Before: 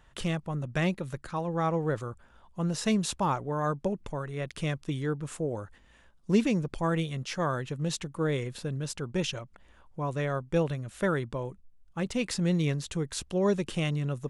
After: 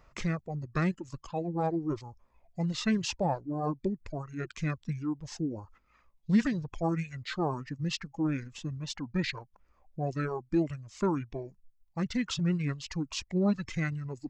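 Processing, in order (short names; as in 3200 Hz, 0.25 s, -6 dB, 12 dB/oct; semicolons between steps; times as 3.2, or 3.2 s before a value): reverb removal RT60 2 s; formant shift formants -6 st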